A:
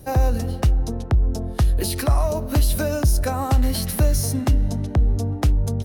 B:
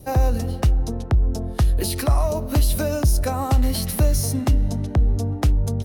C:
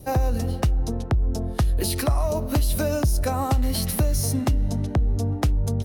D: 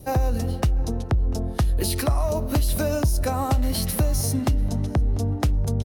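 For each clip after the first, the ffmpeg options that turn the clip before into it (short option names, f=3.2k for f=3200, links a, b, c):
-af "adynamicequalizer=threshold=0.00251:dfrequency=1600:dqfactor=4.9:tfrequency=1600:tqfactor=4.9:attack=5:release=100:ratio=0.375:range=2:mode=cutabove:tftype=bell"
-af "acompressor=threshold=-17dB:ratio=6"
-filter_complex "[0:a]asplit=2[a][b];[b]adelay=694,lowpass=f=2.7k:p=1,volume=-19dB,asplit=2[c][d];[d]adelay=694,lowpass=f=2.7k:p=1,volume=0.34,asplit=2[e][f];[f]adelay=694,lowpass=f=2.7k:p=1,volume=0.34[g];[a][c][e][g]amix=inputs=4:normalize=0"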